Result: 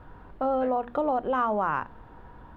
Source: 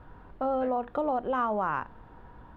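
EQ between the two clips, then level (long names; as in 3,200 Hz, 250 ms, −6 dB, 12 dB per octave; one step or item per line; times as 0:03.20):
mains-hum notches 60/120/180/240 Hz
+2.5 dB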